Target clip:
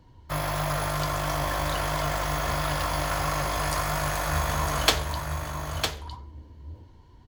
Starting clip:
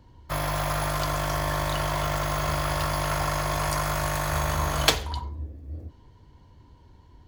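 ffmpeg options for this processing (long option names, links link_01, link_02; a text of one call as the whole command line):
ffmpeg -i in.wav -af "flanger=delay=6.1:depth=7.1:regen=66:speed=1.5:shape=sinusoidal,aecho=1:1:956:0.473,volume=3.5dB" out.wav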